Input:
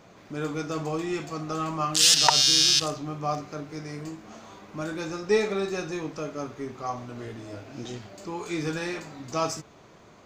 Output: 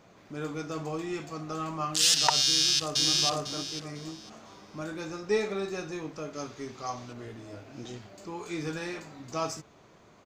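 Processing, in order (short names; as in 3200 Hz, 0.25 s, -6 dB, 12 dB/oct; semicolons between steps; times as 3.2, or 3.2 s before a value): 2.45–3.11 echo throw 0.5 s, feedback 25%, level -1 dB; 6.33–7.13 bell 5000 Hz +10 dB 1.8 oct; gain -4.5 dB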